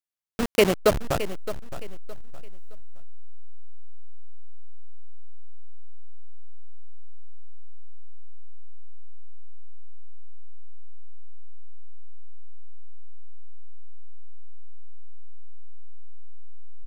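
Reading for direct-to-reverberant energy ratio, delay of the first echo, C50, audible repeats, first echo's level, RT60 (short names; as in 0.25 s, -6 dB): none, 0.616 s, none, 3, -13.5 dB, none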